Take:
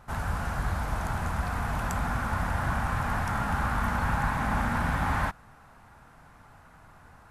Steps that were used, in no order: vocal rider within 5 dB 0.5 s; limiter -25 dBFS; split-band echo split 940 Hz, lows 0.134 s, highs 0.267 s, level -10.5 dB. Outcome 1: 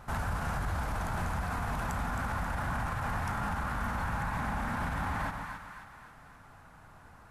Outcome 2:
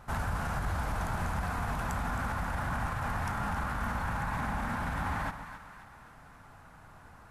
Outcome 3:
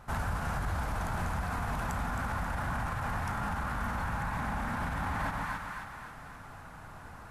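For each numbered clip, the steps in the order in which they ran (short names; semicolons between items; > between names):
vocal rider > split-band echo > limiter; limiter > vocal rider > split-band echo; split-band echo > limiter > vocal rider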